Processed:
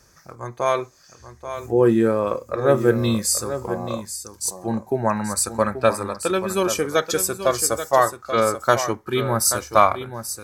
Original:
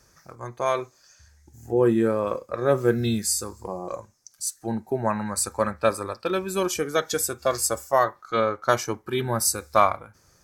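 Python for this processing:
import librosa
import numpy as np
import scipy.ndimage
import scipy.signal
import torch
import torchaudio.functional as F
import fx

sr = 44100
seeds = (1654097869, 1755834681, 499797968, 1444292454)

y = x + 10.0 ** (-10.5 / 20.0) * np.pad(x, (int(833 * sr / 1000.0), 0))[:len(x)]
y = y * librosa.db_to_amplitude(3.5)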